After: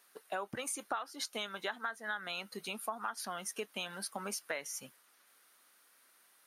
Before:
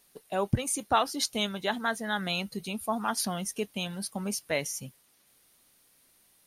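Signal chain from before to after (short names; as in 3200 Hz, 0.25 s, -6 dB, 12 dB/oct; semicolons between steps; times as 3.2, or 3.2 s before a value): HPF 320 Hz 12 dB/oct; bell 1400 Hz +11 dB 1.1 oct; compressor 10:1, threshold -31 dBFS, peak gain reduction 19 dB; gain -3.5 dB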